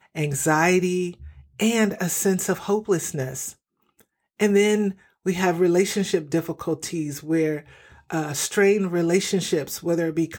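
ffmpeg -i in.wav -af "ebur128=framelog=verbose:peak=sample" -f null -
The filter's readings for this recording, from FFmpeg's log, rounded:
Integrated loudness:
  I:         -22.9 LUFS
  Threshold: -33.4 LUFS
Loudness range:
  LRA:         2.0 LU
  Threshold: -43.7 LUFS
  LRA low:   -24.6 LUFS
  LRA high:  -22.7 LUFS
Sample peak:
  Peak:       -4.9 dBFS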